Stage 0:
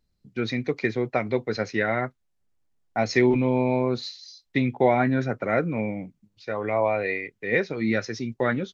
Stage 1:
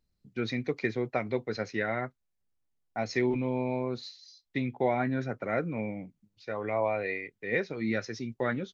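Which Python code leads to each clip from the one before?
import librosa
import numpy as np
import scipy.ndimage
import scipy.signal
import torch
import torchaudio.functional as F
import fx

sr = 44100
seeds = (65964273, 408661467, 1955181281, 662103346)

y = fx.rider(x, sr, range_db=3, speed_s=2.0)
y = F.gain(torch.from_numpy(y), -7.0).numpy()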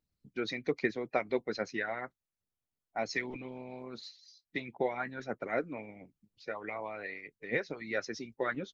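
y = fx.hpss(x, sr, part='harmonic', gain_db=-17)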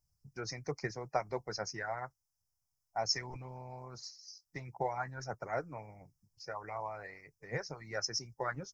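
y = fx.curve_eq(x, sr, hz=(140.0, 230.0, 540.0, 880.0, 1700.0, 3700.0, 5200.0, 7900.0), db=(0, -19, -11, -2, -11, -28, 7, 0))
y = F.gain(torch.from_numpy(y), 6.0).numpy()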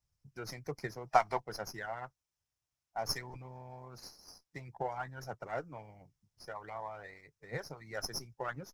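y = fx.spec_box(x, sr, start_s=1.07, length_s=0.33, low_hz=640.0, high_hz=6100.0, gain_db=11)
y = fx.running_max(y, sr, window=3)
y = F.gain(torch.from_numpy(y), -2.0).numpy()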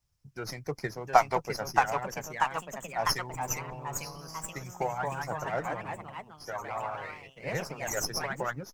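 y = fx.echo_pitch(x, sr, ms=750, semitones=2, count=3, db_per_echo=-3.0)
y = F.gain(torch.from_numpy(y), 5.5).numpy()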